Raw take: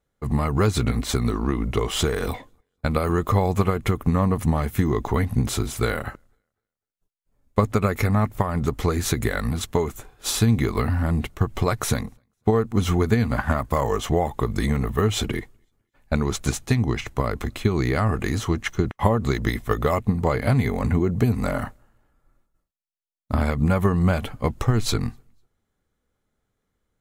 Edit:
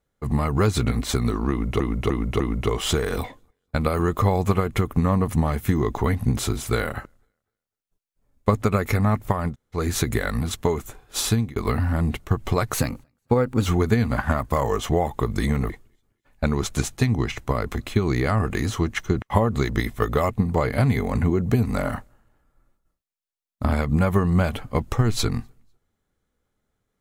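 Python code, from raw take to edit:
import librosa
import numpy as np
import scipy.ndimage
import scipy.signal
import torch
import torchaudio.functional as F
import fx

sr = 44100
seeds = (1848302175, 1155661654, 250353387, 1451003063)

y = fx.edit(x, sr, fx.repeat(start_s=1.5, length_s=0.3, count=4),
    fx.room_tone_fill(start_s=8.61, length_s=0.26, crossfade_s=0.1),
    fx.fade_out_span(start_s=10.39, length_s=0.27),
    fx.speed_span(start_s=11.84, length_s=1.02, speed=1.11),
    fx.cut(start_s=14.9, length_s=0.49), tone=tone)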